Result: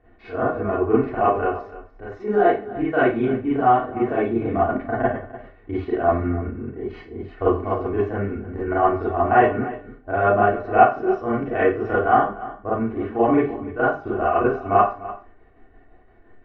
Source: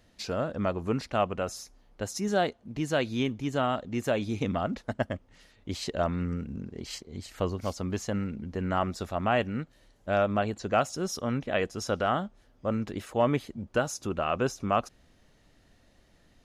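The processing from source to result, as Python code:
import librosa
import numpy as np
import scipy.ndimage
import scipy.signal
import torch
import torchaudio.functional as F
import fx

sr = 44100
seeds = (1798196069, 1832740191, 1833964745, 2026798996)

y = scipy.signal.sosfilt(scipy.signal.butter(4, 1900.0, 'lowpass', fs=sr, output='sos'), x)
y = fx.peak_eq(y, sr, hz=510.0, db=3.0, octaves=2.0)
y = y + 0.87 * np.pad(y, (int(2.7 * sr / 1000.0), 0))[:len(y)]
y = fx.chopper(y, sr, hz=5.8, depth_pct=65, duty_pct=65)
y = y + 10.0 ** (-16.5 / 20.0) * np.pad(y, (int(296 * sr / 1000.0), 0))[:len(y)]
y = fx.rev_schroeder(y, sr, rt60_s=0.34, comb_ms=31, drr_db=-9.0)
y = y * librosa.db_to_amplitude(-1.5)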